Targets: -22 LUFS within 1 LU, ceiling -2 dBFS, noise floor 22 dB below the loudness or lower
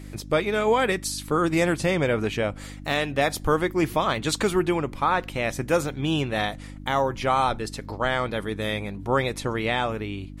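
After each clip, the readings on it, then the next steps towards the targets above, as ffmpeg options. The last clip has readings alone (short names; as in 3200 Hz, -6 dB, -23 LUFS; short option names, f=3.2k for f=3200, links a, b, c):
hum 50 Hz; harmonics up to 300 Hz; hum level -37 dBFS; loudness -25.0 LUFS; peak -10.0 dBFS; loudness target -22.0 LUFS
-> -af "bandreject=f=50:t=h:w=4,bandreject=f=100:t=h:w=4,bandreject=f=150:t=h:w=4,bandreject=f=200:t=h:w=4,bandreject=f=250:t=h:w=4,bandreject=f=300:t=h:w=4"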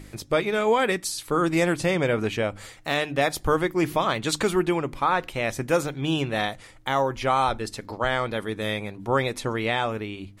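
hum none; loudness -25.0 LUFS; peak -10.5 dBFS; loudness target -22.0 LUFS
-> -af "volume=3dB"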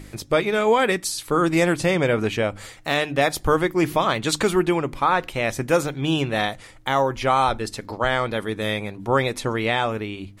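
loudness -22.0 LUFS; peak -7.5 dBFS; noise floor -45 dBFS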